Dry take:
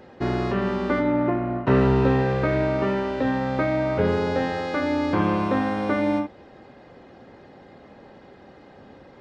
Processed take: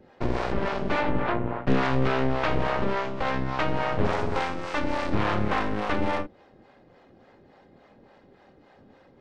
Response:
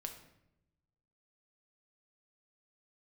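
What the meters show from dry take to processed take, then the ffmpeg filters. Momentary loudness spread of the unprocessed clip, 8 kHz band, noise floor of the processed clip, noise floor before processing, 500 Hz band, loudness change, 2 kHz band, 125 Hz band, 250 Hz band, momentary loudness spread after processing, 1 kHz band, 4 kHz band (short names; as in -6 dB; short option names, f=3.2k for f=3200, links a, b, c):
5 LU, n/a, -57 dBFS, -49 dBFS, -5.0 dB, -4.0 dB, 0.0 dB, -4.5 dB, -6.5 dB, 5 LU, -0.5 dB, +2.0 dB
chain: -filter_complex "[0:a]aeval=exprs='0.473*(cos(1*acos(clip(val(0)/0.473,-1,1)))-cos(1*PI/2))+0.168*(cos(8*acos(clip(val(0)/0.473,-1,1)))-cos(8*PI/2))':c=same,acrossover=split=480[a][b];[a]aeval=exprs='val(0)*(1-0.7/2+0.7/2*cos(2*PI*3.5*n/s))':c=same[c];[b]aeval=exprs='val(0)*(1-0.7/2-0.7/2*cos(2*PI*3.5*n/s))':c=same[d];[c][d]amix=inputs=2:normalize=0,volume=-4.5dB"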